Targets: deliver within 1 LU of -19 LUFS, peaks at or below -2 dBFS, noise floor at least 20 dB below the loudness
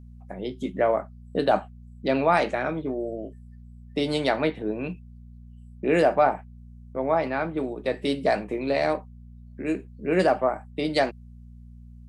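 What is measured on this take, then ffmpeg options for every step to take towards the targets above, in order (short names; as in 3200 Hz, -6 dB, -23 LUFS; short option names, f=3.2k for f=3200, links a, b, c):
hum 60 Hz; harmonics up to 240 Hz; hum level -43 dBFS; loudness -26.0 LUFS; peak -8.0 dBFS; loudness target -19.0 LUFS
-> -af "bandreject=f=60:t=h:w=4,bandreject=f=120:t=h:w=4,bandreject=f=180:t=h:w=4,bandreject=f=240:t=h:w=4"
-af "volume=7dB,alimiter=limit=-2dB:level=0:latency=1"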